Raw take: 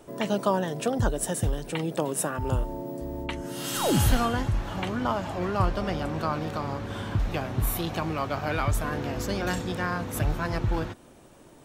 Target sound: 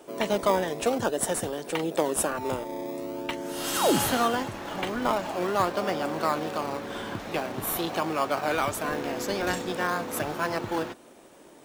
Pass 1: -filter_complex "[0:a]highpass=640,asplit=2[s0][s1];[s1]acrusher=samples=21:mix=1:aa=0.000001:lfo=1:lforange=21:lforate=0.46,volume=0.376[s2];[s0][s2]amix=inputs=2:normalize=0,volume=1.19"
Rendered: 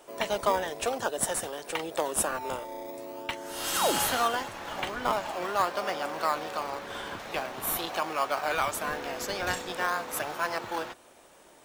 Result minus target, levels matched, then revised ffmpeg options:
250 Hz band -7.0 dB
-filter_complex "[0:a]highpass=310,asplit=2[s0][s1];[s1]acrusher=samples=21:mix=1:aa=0.000001:lfo=1:lforange=21:lforate=0.46,volume=0.376[s2];[s0][s2]amix=inputs=2:normalize=0,volume=1.19"

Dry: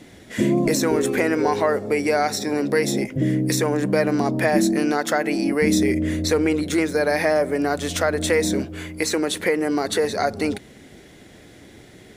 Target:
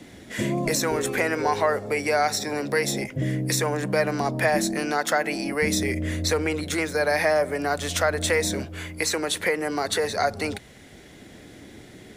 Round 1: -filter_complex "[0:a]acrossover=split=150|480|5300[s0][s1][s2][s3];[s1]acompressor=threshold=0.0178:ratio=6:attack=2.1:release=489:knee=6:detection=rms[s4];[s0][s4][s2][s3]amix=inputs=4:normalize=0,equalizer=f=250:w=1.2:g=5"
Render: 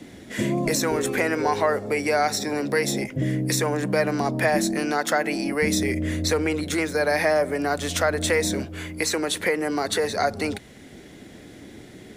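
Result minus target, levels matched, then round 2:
compression: peak gain reduction -9.5 dB
-filter_complex "[0:a]acrossover=split=150|480|5300[s0][s1][s2][s3];[s1]acompressor=threshold=0.00473:ratio=6:attack=2.1:release=489:knee=6:detection=rms[s4];[s0][s4][s2][s3]amix=inputs=4:normalize=0,equalizer=f=250:w=1.2:g=5"

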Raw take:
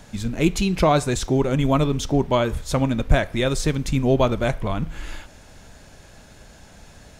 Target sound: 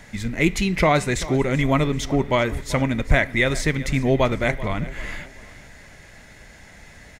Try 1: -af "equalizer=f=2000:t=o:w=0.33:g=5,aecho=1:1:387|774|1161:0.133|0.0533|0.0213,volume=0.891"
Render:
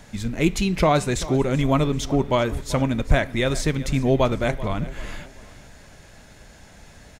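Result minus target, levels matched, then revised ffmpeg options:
2 kHz band -5.0 dB
-af "equalizer=f=2000:t=o:w=0.33:g=16.5,aecho=1:1:387|774|1161:0.133|0.0533|0.0213,volume=0.891"

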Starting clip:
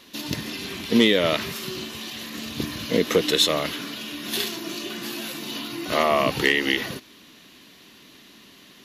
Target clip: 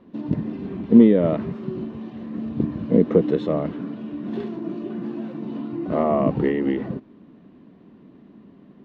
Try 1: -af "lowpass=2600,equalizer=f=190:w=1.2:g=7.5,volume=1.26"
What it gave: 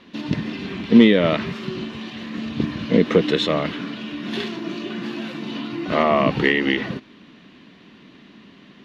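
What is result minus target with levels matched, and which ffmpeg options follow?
2 kHz band +15.0 dB
-af "lowpass=720,equalizer=f=190:w=1.2:g=7.5,volume=1.26"

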